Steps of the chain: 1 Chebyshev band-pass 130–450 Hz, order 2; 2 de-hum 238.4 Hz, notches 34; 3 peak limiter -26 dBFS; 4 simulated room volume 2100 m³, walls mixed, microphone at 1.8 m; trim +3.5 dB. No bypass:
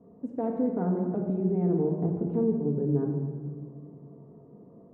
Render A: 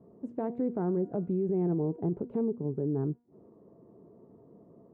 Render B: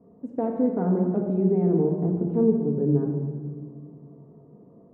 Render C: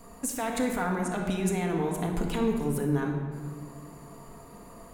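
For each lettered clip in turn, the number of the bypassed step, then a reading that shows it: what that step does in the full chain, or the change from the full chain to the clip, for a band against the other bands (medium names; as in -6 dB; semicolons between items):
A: 4, echo-to-direct -0.5 dB to none; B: 3, mean gain reduction 1.5 dB; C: 1, 1 kHz band +9.5 dB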